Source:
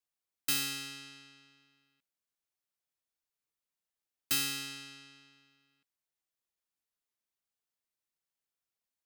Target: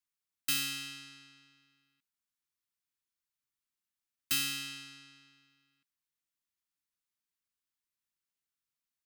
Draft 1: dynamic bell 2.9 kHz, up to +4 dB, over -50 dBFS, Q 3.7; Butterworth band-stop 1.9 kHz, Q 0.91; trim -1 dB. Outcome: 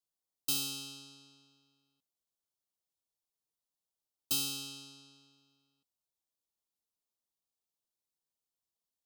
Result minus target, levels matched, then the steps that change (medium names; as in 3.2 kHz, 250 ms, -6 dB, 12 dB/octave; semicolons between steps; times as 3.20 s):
500 Hz band +11.0 dB
change: Butterworth band-stop 570 Hz, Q 0.91